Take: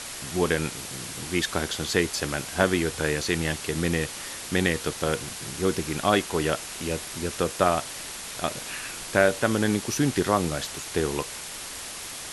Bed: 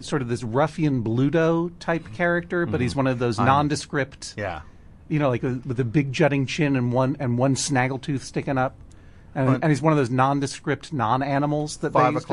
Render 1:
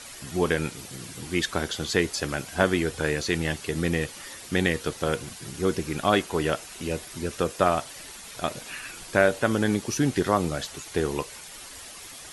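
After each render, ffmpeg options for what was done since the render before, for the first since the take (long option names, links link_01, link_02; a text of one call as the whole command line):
ffmpeg -i in.wav -af "afftdn=noise_reduction=9:noise_floor=-38" out.wav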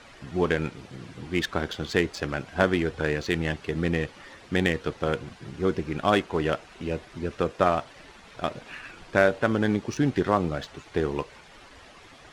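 ffmpeg -i in.wav -af "adynamicsmooth=sensitivity=2:basefreq=2600" out.wav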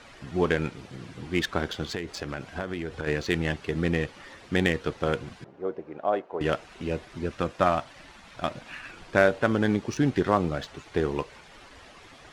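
ffmpeg -i in.wav -filter_complex "[0:a]asplit=3[link_01][link_02][link_03];[link_01]afade=type=out:start_time=1.84:duration=0.02[link_04];[link_02]acompressor=threshold=-28dB:ratio=6:attack=3.2:release=140:knee=1:detection=peak,afade=type=in:start_time=1.84:duration=0.02,afade=type=out:start_time=3.06:duration=0.02[link_05];[link_03]afade=type=in:start_time=3.06:duration=0.02[link_06];[link_04][link_05][link_06]amix=inputs=3:normalize=0,asettb=1/sr,asplit=3[link_07][link_08][link_09];[link_07]atrim=end=5.444[link_10];[link_08]atrim=start=5.44:end=6.41,asetpts=PTS-STARTPTS,afade=type=in:duration=0.004:curve=qsin,afade=type=out:start_time=0.966:duration=0.004:curve=qsin,bandpass=frequency=620:width_type=q:width=1.9[link_11];[link_09]atrim=start=6.406[link_12];[link_10][link_11]acrossfade=duration=0.004:curve1=hsin:curve2=qsin[link_13];[link_13][link_12]acrossfade=duration=0.004:curve1=qsin:curve2=hsin,asettb=1/sr,asplit=3[link_14][link_15][link_16];[link_14]atrim=end=7.304[link_17];[link_15]atrim=start=7.3:end=8.85,asetpts=PTS-STARTPTS,afade=type=in:duration=0.004:curve=qsin,afade=type=out:start_time=1.546:duration=0.004:curve=qsin,equalizer=frequency=430:width=5:gain=-10.5[link_18];[link_16]atrim=start=8.846[link_19];[link_17][link_18]acrossfade=duration=0.004:curve1=hsin:curve2=qsin[link_20];[link_20][link_19]acrossfade=duration=0.004:curve1=qsin:curve2=hsin" out.wav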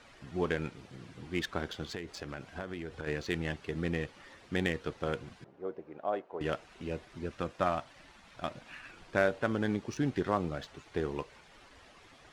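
ffmpeg -i in.wav -af "volume=-7.5dB" out.wav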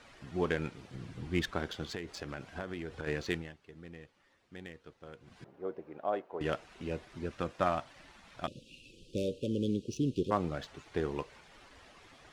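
ffmpeg -i in.wav -filter_complex "[0:a]asettb=1/sr,asplit=3[link_01][link_02][link_03];[link_01]atrim=end=0.944[link_04];[link_02]atrim=start=0.94:end=1.51,asetpts=PTS-STARTPTS,afade=type=in:duration=0.004:curve=qsin,afade=type=out:start_time=0.566:duration=0.004:curve=qsin,lowshelf=frequency=160:gain=9.5[link_05];[link_03]atrim=start=1.506[link_06];[link_04][link_05]acrossfade=duration=0.004:curve1=hsin:curve2=qsin[link_07];[link_07][link_06]acrossfade=duration=0.004:curve1=qsin:curve2=hsin,asplit=3[link_08][link_09][link_10];[link_08]afade=type=out:start_time=8.46:duration=0.02[link_11];[link_09]asuperstop=centerf=1200:order=20:qfactor=0.57,afade=type=in:start_time=8.46:duration=0.02,afade=type=out:start_time=10.3:duration=0.02[link_12];[link_10]afade=type=in:start_time=10.3:duration=0.02[link_13];[link_11][link_12][link_13]amix=inputs=3:normalize=0,asplit=3[link_14][link_15][link_16];[link_14]atrim=end=3.56,asetpts=PTS-STARTPTS,afade=type=out:start_time=3.32:duration=0.24:curve=qua:silence=0.158489[link_17];[link_15]atrim=start=3.56:end=5.16,asetpts=PTS-STARTPTS,volume=-16dB[link_18];[link_16]atrim=start=5.16,asetpts=PTS-STARTPTS,afade=type=in:duration=0.24:curve=qua:silence=0.158489[link_19];[link_17][link_18][link_19]concat=n=3:v=0:a=1" out.wav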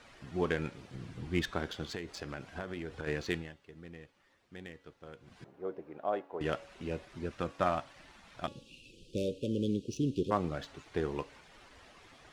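ffmpeg -i in.wav -af "bandreject=frequency=280.5:width_type=h:width=4,bandreject=frequency=561:width_type=h:width=4,bandreject=frequency=841.5:width_type=h:width=4,bandreject=frequency=1122:width_type=h:width=4,bandreject=frequency=1402.5:width_type=h:width=4,bandreject=frequency=1683:width_type=h:width=4,bandreject=frequency=1963.5:width_type=h:width=4,bandreject=frequency=2244:width_type=h:width=4,bandreject=frequency=2524.5:width_type=h:width=4,bandreject=frequency=2805:width_type=h:width=4,bandreject=frequency=3085.5:width_type=h:width=4,bandreject=frequency=3366:width_type=h:width=4,bandreject=frequency=3646.5:width_type=h:width=4,bandreject=frequency=3927:width_type=h:width=4,bandreject=frequency=4207.5:width_type=h:width=4,bandreject=frequency=4488:width_type=h:width=4,bandreject=frequency=4768.5:width_type=h:width=4,bandreject=frequency=5049:width_type=h:width=4,bandreject=frequency=5329.5:width_type=h:width=4,bandreject=frequency=5610:width_type=h:width=4,bandreject=frequency=5890.5:width_type=h:width=4,bandreject=frequency=6171:width_type=h:width=4,bandreject=frequency=6451.5:width_type=h:width=4,bandreject=frequency=6732:width_type=h:width=4,bandreject=frequency=7012.5:width_type=h:width=4,bandreject=frequency=7293:width_type=h:width=4,bandreject=frequency=7573.5:width_type=h:width=4,bandreject=frequency=7854:width_type=h:width=4" out.wav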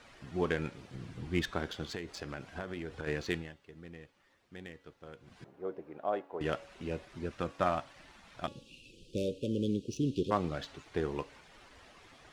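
ffmpeg -i in.wav -filter_complex "[0:a]asettb=1/sr,asplit=3[link_01][link_02][link_03];[link_01]atrim=end=10.054[link_04];[link_02]atrim=start=10.05:end=10.77,asetpts=PTS-STARTPTS,afade=type=in:duration=0.004:curve=qsin,afade=type=out:start_time=0.716:duration=0.004:curve=qsin,equalizer=frequency=3800:width_type=o:width=1.4:gain=3.5[link_05];[link_03]atrim=start=10.766[link_06];[link_04][link_05]acrossfade=duration=0.004:curve1=hsin:curve2=qsin[link_07];[link_07][link_06]acrossfade=duration=0.004:curve1=qsin:curve2=hsin" out.wav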